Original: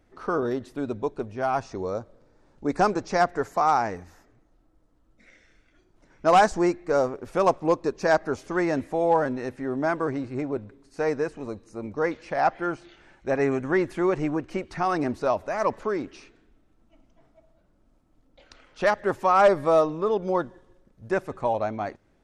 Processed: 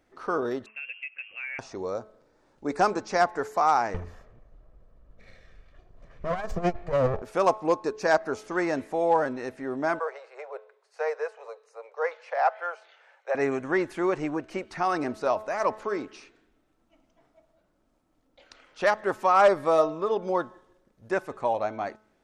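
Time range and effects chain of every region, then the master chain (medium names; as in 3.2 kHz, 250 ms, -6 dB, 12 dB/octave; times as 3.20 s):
0.66–1.59 s: high-pass 310 Hz + frequency inversion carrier 3 kHz + compression 4:1, threshold -34 dBFS
3.94–7.22 s: comb filter that takes the minimum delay 1.7 ms + RIAA curve playback + compressor with a negative ratio -21 dBFS
9.99–13.35 s: steep high-pass 450 Hz 72 dB/octave + treble shelf 4.5 kHz -11.5 dB
whole clip: bass shelf 200 Hz -11.5 dB; de-hum 215.7 Hz, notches 7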